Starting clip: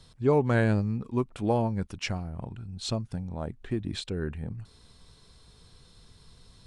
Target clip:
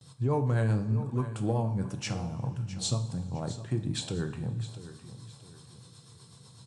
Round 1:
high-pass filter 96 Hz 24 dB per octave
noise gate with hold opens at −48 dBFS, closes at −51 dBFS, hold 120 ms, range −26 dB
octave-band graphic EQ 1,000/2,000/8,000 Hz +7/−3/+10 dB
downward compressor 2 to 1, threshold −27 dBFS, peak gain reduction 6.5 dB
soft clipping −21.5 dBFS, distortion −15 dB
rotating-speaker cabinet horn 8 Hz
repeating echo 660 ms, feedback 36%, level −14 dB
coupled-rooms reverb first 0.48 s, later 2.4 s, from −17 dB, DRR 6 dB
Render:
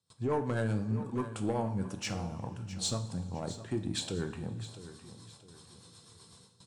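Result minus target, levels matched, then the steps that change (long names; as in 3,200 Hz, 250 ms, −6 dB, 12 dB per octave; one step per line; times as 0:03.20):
soft clipping: distortion +19 dB; 125 Hz band −3.5 dB
add after high-pass filter: parametric band 130 Hz +14 dB 0.41 octaves
change: soft clipping −9.5 dBFS, distortion −34 dB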